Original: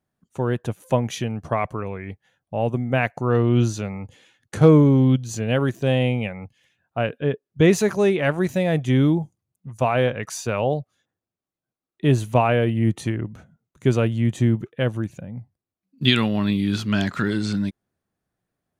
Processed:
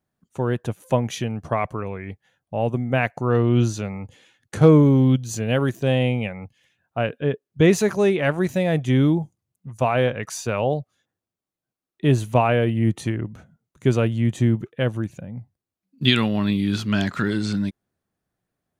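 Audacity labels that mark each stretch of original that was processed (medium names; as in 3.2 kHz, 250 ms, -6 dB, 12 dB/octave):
4.830000	5.800000	treble shelf 8.9 kHz +6 dB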